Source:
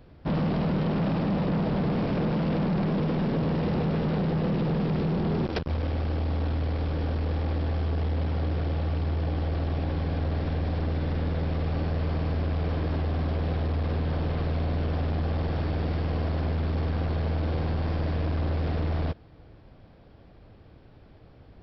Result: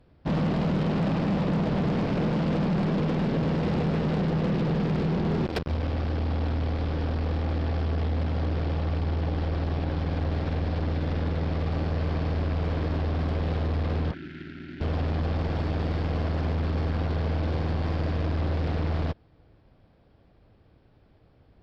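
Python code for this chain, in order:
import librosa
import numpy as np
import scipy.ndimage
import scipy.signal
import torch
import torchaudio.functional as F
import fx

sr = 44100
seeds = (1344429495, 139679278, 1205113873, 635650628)

y = fx.bandpass_edges(x, sr, low_hz=230.0, high_hz=2700.0, at=(14.11, 14.81))
y = fx.cheby_harmonics(y, sr, harmonics=(7,), levels_db=(-22,), full_scale_db=-19.0)
y = fx.spec_box(y, sr, start_s=14.13, length_s=0.68, low_hz=400.0, high_hz=1300.0, gain_db=-26)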